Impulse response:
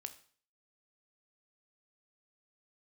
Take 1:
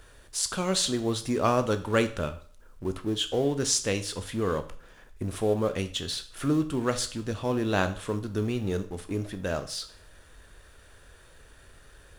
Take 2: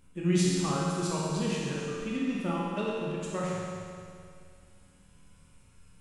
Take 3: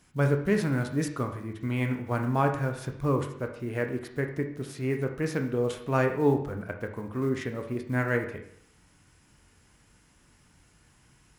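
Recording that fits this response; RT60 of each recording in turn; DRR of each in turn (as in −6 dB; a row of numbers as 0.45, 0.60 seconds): 1; 0.50, 2.3, 0.65 seconds; 8.5, −6.0, 4.5 decibels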